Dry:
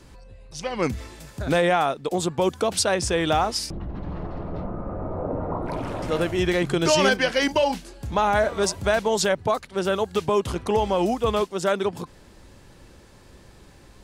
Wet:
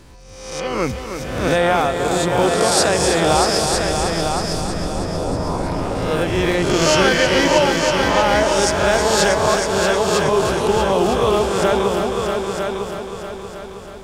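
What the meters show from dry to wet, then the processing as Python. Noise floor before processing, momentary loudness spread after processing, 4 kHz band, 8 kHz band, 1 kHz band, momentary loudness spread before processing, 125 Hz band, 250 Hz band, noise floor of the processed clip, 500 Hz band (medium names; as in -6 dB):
-50 dBFS, 12 LU, +8.0 dB, +9.0 dB, +7.0 dB, 13 LU, +6.5 dB, +6.0 dB, -34 dBFS, +6.5 dB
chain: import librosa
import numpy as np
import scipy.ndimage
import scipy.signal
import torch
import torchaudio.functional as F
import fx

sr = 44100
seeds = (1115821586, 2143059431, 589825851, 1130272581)

y = fx.spec_swells(x, sr, rise_s=0.9)
y = fx.echo_heads(y, sr, ms=318, heads='all three', feedback_pct=48, wet_db=-8.0)
y = fx.dmg_crackle(y, sr, seeds[0], per_s=85.0, level_db=-48.0)
y = y * librosa.db_to_amplitude(1.5)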